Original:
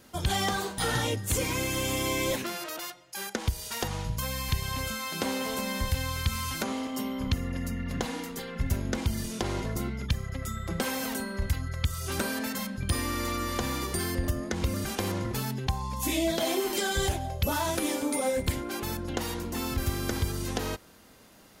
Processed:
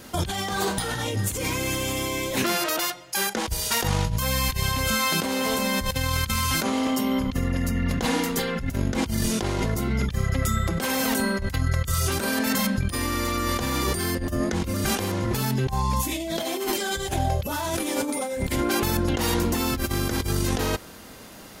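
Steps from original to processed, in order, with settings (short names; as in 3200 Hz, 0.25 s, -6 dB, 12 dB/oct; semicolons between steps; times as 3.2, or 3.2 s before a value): negative-ratio compressor -34 dBFS, ratio -1; gain +8.5 dB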